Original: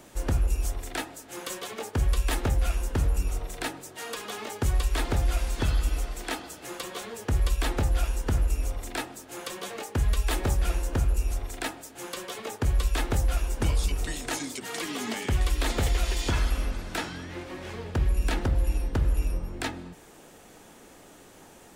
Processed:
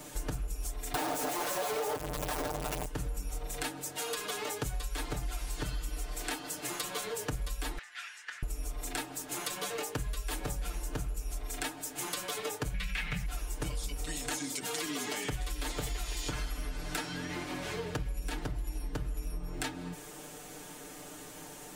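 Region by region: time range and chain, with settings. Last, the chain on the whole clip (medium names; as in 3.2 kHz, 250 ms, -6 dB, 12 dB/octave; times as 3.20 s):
0.94–2.86 s: one-bit comparator + peaking EQ 650 Hz +14 dB 2.2 oct
7.78–8.43 s: ladder band-pass 2 kHz, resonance 60% + treble shelf 2.6 kHz +8.5 dB
12.74–13.26 s: FFT filter 120 Hz 0 dB, 190 Hz +13 dB, 300 Hz -16 dB, 510 Hz -6 dB, 990 Hz -5 dB, 2.3 kHz +15 dB, 3.3 kHz +5 dB, 7.6 kHz -7 dB + level flattener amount 50%
whole clip: treble shelf 4.7 kHz +6 dB; comb 6.7 ms, depth 95%; compression 6:1, threshold -33 dBFS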